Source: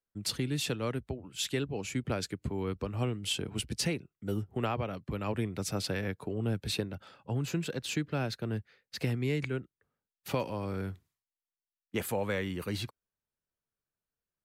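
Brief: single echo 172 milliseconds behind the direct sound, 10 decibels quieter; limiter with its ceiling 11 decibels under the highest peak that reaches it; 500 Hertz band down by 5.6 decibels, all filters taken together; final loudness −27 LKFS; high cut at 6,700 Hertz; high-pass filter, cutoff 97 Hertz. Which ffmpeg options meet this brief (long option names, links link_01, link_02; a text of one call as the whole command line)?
ffmpeg -i in.wav -af "highpass=97,lowpass=6700,equalizer=frequency=500:width_type=o:gain=-7,alimiter=level_in=5.5dB:limit=-24dB:level=0:latency=1,volume=-5.5dB,aecho=1:1:172:0.316,volume=12.5dB" out.wav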